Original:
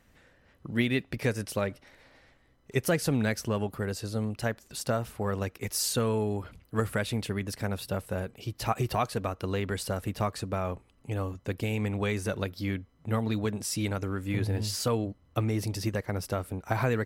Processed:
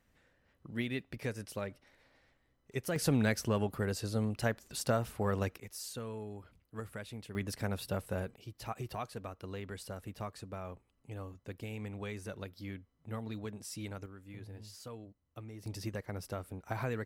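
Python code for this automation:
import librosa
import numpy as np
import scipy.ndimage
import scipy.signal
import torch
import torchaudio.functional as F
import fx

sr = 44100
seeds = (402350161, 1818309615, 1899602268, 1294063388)

y = fx.gain(x, sr, db=fx.steps((0.0, -9.5), (2.96, -2.0), (5.6, -14.5), (7.35, -4.0), (8.36, -12.0), (14.06, -19.0), (15.66, -9.0)))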